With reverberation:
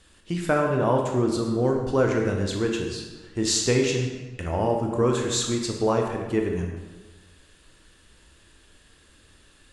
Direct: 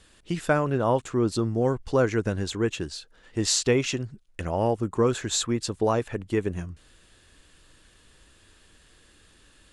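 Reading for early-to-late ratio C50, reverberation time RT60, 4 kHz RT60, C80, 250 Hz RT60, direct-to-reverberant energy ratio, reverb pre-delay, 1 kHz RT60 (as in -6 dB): 3.5 dB, 1.3 s, 0.95 s, 5.5 dB, 1.3 s, 1.5 dB, 19 ms, 1.3 s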